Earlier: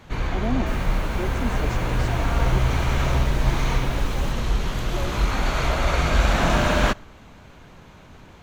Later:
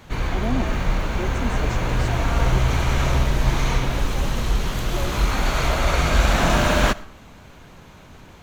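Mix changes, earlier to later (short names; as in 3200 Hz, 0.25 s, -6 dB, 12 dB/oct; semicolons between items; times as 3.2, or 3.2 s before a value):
first sound: send +10.0 dB; second sound -12.0 dB; master: add high shelf 6700 Hz +6.5 dB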